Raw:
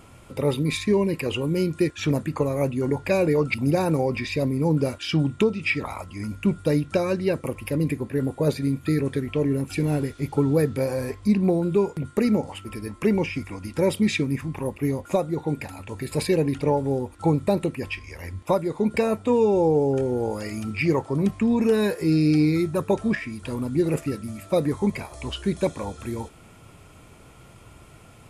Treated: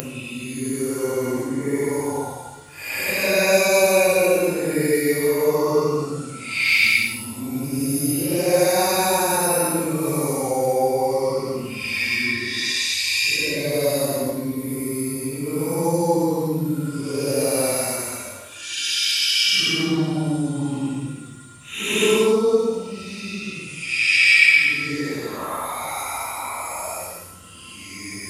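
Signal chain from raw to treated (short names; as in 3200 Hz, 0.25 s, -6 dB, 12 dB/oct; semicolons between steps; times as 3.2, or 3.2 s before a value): hum 60 Hz, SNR 32 dB; Paulstretch 8.1×, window 0.10 s, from 2.69; RIAA curve recording; gain +4.5 dB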